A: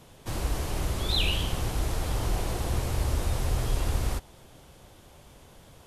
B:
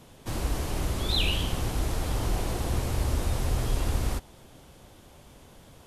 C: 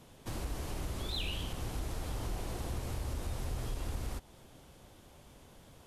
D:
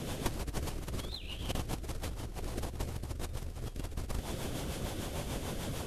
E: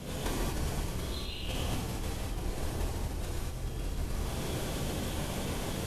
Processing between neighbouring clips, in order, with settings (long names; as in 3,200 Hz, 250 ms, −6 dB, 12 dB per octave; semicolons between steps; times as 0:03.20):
parametric band 250 Hz +3.5 dB 0.73 octaves
downward compressor 2 to 1, threshold −32 dBFS, peak gain reduction 7 dB; hard clipping −24 dBFS, distortion −26 dB; level −5 dB
compressor whose output falls as the input rises −44 dBFS, ratio −0.5; rotating-speaker cabinet horn 6.7 Hz; level +11.5 dB
reverb whose tail is shaped and stops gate 270 ms flat, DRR −7.5 dB; level −4.5 dB